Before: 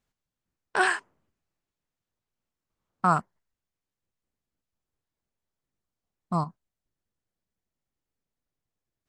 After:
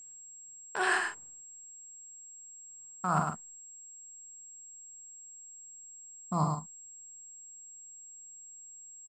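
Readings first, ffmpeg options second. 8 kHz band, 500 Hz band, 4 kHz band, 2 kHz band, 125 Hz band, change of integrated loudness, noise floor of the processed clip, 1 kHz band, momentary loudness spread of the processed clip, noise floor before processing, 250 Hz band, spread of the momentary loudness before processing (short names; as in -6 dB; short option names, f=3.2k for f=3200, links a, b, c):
+8.5 dB, -4.5 dB, -3.0 dB, -3.5 dB, -1.0 dB, -10.5 dB, -51 dBFS, -4.5 dB, 17 LU, under -85 dBFS, -3.0 dB, 8 LU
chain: -filter_complex "[0:a]areverse,acompressor=threshold=-29dB:ratio=12,areverse,asplit=2[a][b];[b]adelay=45,volume=-7dB[c];[a][c]amix=inputs=2:normalize=0,aecho=1:1:37.9|105:0.316|0.562,aeval=exprs='val(0)+0.00316*sin(2*PI*7600*n/s)':c=same,volume=2.5dB"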